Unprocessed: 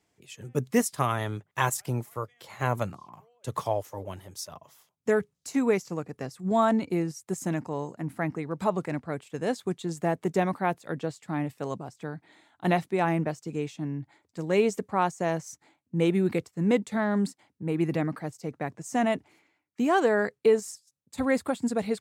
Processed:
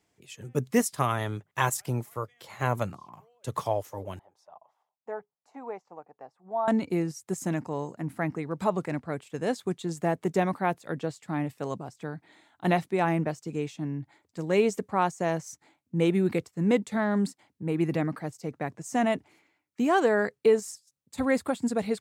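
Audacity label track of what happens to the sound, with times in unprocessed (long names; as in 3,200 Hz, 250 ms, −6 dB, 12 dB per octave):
4.190000	6.680000	resonant band-pass 800 Hz, Q 3.8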